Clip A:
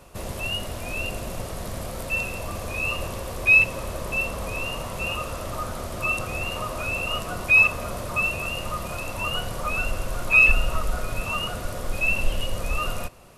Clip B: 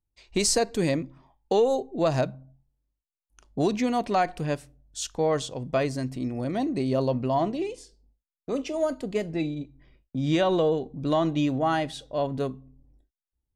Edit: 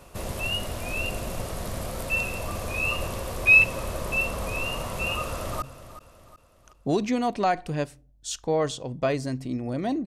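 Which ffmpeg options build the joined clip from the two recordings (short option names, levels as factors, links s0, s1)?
-filter_complex "[0:a]apad=whole_dur=10.06,atrim=end=10.06,atrim=end=5.622[s0];[1:a]atrim=start=2.328:end=6.77[s1];[s0][s1]acrossfade=d=0.004:c1=hsin:c2=hsin,asplit=2[s2][s3];[s3]afade=t=in:st=5.26:d=0.01,afade=t=out:st=5.62:d=0.01,aecho=0:1:370|740|1110|1480:0.211349|0.095107|0.0427982|0.0192592[s4];[s2][s4]amix=inputs=2:normalize=0"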